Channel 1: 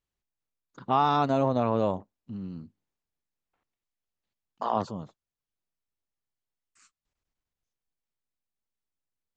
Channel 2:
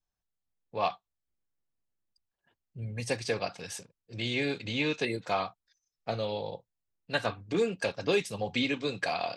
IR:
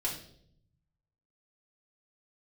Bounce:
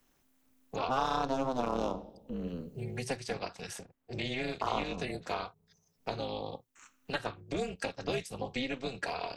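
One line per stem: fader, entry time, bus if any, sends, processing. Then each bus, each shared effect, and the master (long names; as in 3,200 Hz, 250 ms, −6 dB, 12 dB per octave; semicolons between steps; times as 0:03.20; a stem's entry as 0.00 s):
−0.5 dB, 0.00 s, send −12.5 dB, adaptive Wiener filter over 9 samples; high-pass filter 160 Hz 24 dB per octave; parametric band 5,800 Hz +10 dB 0.62 octaves
−3.5 dB, 0.00 s, no send, high-shelf EQ 9,100 Hz +9 dB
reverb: on, RT60 0.65 s, pre-delay 3 ms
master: amplitude modulation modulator 260 Hz, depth 85%; multiband upward and downward compressor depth 70%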